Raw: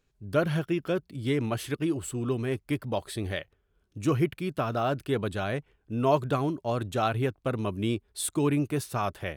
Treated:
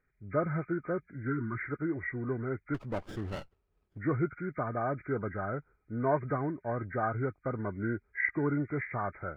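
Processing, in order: knee-point frequency compression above 1.2 kHz 4:1; 1.30–1.62 s: time-frequency box 420–940 Hz -23 dB; 2.74–3.99 s: sliding maximum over 17 samples; trim -5 dB

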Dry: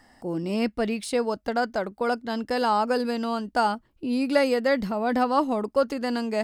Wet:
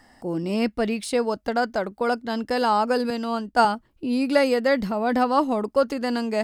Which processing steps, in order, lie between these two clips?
3.10–3.65 s: three bands expanded up and down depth 70%; trim +2 dB

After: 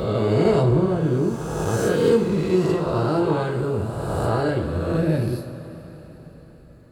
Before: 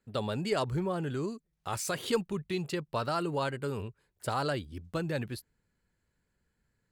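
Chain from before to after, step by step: reverse spectral sustain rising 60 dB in 1.96 s; tilt shelf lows +8.5 dB, about 650 Hz; upward compressor, threshold -43 dBFS; two-slope reverb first 0.36 s, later 4.7 s, from -18 dB, DRR -0.5 dB; trim +1.5 dB

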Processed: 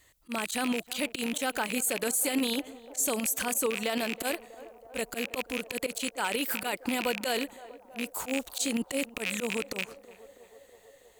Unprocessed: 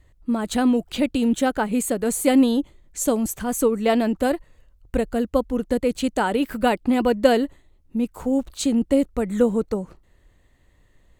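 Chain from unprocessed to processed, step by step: rattle on loud lows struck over -32 dBFS, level -19 dBFS; tilt EQ +4 dB/octave; slow attack 101 ms; peak limiter -18.5 dBFS, peak gain reduction 14 dB; on a send: band-passed feedback delay 323 ms, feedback 81%, band-pass 610 Hz, level -16 dB

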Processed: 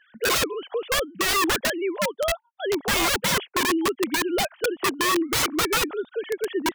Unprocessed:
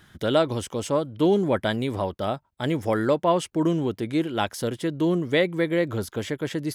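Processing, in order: formants replaced by sine waves; integer overflow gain 21 dB; trim +3.5 dB

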